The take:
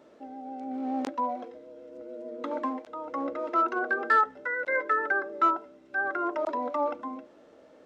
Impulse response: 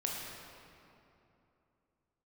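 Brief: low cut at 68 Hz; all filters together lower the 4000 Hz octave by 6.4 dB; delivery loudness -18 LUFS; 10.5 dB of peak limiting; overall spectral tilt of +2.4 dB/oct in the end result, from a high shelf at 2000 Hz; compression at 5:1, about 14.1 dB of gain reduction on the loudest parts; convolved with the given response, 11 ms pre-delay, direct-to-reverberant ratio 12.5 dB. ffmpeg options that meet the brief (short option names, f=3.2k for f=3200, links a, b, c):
-filter_complex "[0:a]highpass=68,highshelf=f=2k:g=-3,equalizer=f=4k:t=o:g=-5.5,acompressor=threshold=-36dB:ratio=5,alimiter=level_in=10.5dB:limit=-24dB:level=0:latency=1,volume=-10.5dB,asplit=2[a][b];[1:a]atrim=start_sample=2205,adelay=11[c];[b][c]afir=irnorm=-1:irlink=0,volume=-16dB[d];[a][d]amix=inputs=2:normalize=0,volume=25dB"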